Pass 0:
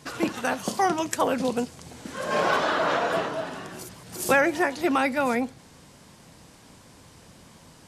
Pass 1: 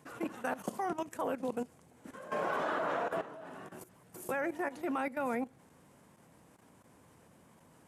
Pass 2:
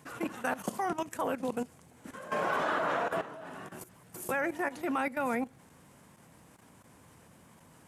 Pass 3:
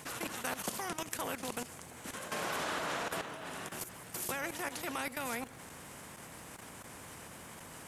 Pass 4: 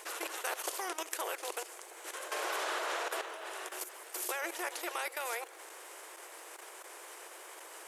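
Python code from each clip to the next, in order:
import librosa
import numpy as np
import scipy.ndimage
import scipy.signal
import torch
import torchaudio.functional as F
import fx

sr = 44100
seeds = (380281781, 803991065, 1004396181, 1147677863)

y1 = fx.highpass(x, sr, hz=150.0, slope=6)
y1 = fx.peak_eq(y1, sr, hz=4600.0, db=-14.0, octaves=1.5)
y1 = fx.level_steps(y1, sr, step_db=14)
y1 = y1 * librosa.db_to_amplitude(-5.5)
y2 = fx.peak_eq(y1, sr, hz=440.0, db=-4.5, octaves=2.4)
y2 = y2 * librosa.db_to_amplitude(6.0)
y3 = fx.spectral_comp(y2, sr, ratio=2.0)
y3 = y3 * librosa.db_to_amplitude(1.0)
y4 = fx.brickwall_highpass(y3, sr, low_hz=320.0)
y4 = y4 * librosa.db_to_amplitude(1.0)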